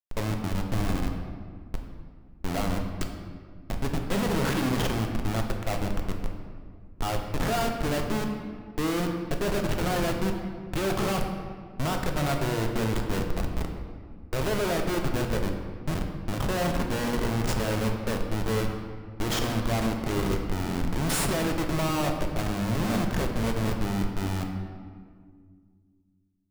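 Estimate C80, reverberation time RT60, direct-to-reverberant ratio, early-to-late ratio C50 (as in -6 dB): 6.5 dB, 1.9 s, 2.5 dB, 5.0 dB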